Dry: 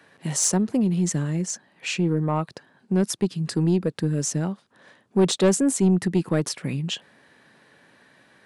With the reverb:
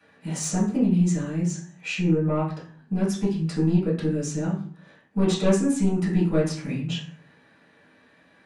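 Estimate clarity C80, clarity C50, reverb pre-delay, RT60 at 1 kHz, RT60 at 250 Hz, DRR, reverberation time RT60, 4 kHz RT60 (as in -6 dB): 10.5 dB, 6.0 dB, 4 ms, 0.45 s, 0.60 s, -8.5 dB, 0.45 s, 0.35 s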